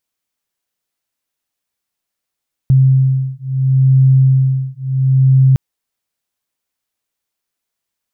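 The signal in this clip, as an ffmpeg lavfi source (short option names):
-f lavfi -i "aevalsrc='0.266*(sin(2*PI*132*t)+sin(2*PI*132.73*t))':d=2.86:s=44100"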